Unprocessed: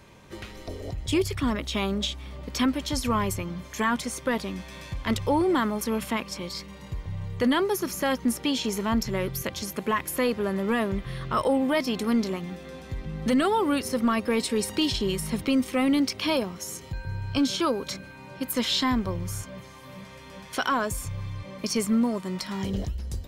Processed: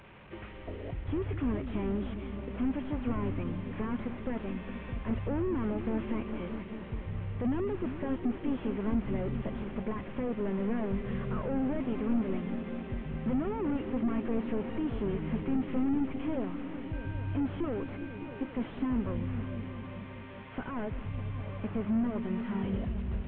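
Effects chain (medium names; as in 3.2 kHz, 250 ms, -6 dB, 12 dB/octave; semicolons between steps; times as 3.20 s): one-bit delta coder 16 kbps, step -43 dBFS; on a send: delay with an opening low-pass 203 ms, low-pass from 200 Hz, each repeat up 1 oct, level -6 dB; on the sum: trim -4 dB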